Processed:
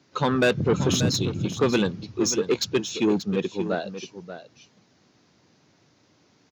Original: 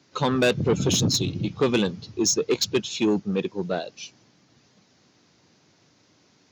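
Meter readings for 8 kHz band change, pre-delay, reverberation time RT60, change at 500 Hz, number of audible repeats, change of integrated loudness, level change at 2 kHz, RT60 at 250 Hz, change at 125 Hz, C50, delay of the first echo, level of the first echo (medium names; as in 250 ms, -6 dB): -3.5 dB, no reverb, no reverb, +0.5 dB, 1, -0.5 dB, +1.5 dB, no reverb, +0.5 dB, no reverb, 584 ms, -11.5 dB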